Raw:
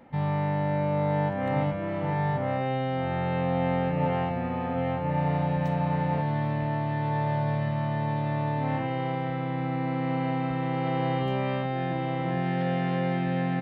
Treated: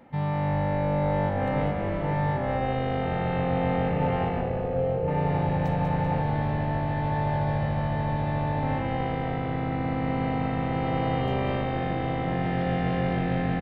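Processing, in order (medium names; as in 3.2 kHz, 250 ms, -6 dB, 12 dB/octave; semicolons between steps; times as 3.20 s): 4.41–5.08 s: ten-band graphic EQ 125 Hz +4 dB, 250 Hz -10 dB, 500 Hz +10 dB, 1 kHz -10 dB, 2 kHz -9 dB, 4 kHz -6 dB; on a send: frequency-shifting echo 194 ms, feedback 56%, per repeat -51 Hz, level -7 dB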